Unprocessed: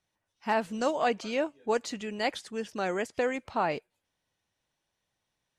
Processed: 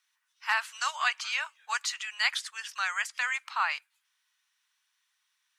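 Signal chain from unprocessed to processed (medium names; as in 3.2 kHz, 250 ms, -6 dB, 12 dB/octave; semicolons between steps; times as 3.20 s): steep high-pass 1.1 kHz 36 dB/octave; trim +7.5 dB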